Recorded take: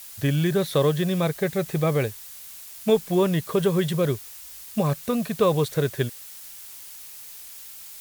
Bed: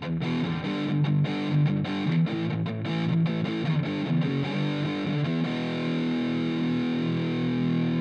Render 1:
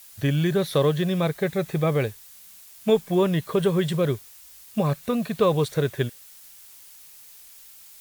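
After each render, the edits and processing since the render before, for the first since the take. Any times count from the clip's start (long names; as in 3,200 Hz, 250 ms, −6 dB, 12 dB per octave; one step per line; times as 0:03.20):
noise reduction from a noise print 6 dB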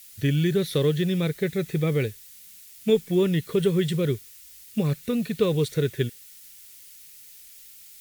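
flat-topped bell 840 Hz −12 dB 1.3 octaves
notch filter 1,600 Hz, Q 9.5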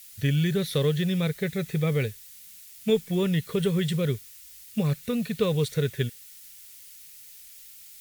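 parametric band 330 Hz −9.5 dB 0.5 octaves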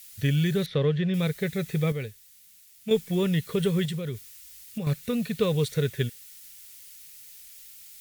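0:00.66–0:01.14: low-pass filter 2,700 Hz
0:01.92–0:02.91: clip gain −7 dB
0:03.85–0:04.87: downward compressor, threshold −28 dBFS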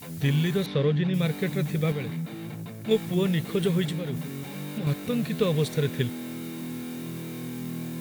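mix in bed −9 dB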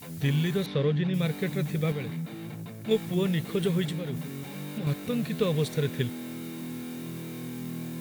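level −2 dB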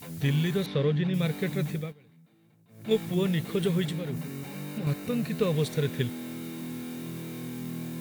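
0:01.69–0:02.93: duck −23.5 dB, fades 0.25 s
0:04.05–0:05.53: notch filter 3,400 Hz, Q 7.3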